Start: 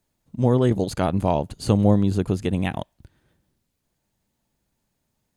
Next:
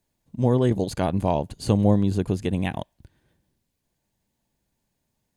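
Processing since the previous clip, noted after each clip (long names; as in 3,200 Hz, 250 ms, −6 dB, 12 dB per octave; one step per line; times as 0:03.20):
notch filter 1,300 Hz, Q 7.7
level −1.5 dB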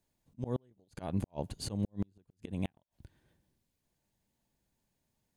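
volume swells 246 ms
gate with flip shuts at −16 dBFS, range −39 dB
level −4.5 dB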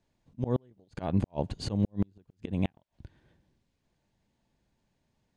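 high-frequency loss of the air 100 metres
level +6.5 dB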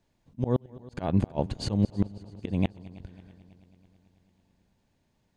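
echo machine with several playback heads 109 ms, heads second and third, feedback 61%, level −22 dB
level +3 dB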